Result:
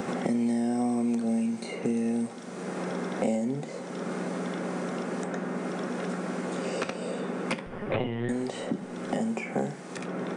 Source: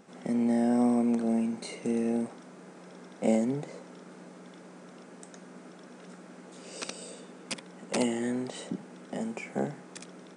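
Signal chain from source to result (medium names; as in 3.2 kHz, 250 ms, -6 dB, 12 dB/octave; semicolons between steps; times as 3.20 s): 7.66–8.29 s: LPC vocoder at 8 kHz pitch kept; two-slope reverb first 0.27 s, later 2.1 s, from -21 dB, DRR 8 dB; three bands compressed up and down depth 100%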